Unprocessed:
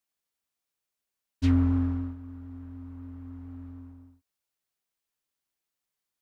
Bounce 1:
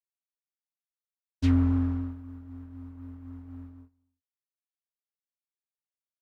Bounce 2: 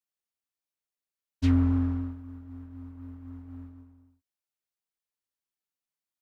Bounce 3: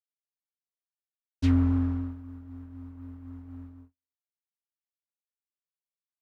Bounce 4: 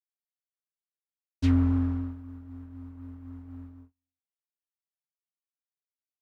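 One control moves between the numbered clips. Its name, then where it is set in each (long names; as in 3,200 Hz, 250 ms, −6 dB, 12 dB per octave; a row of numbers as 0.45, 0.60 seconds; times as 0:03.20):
noise gate, range: −24, −8, −57, −41 decibels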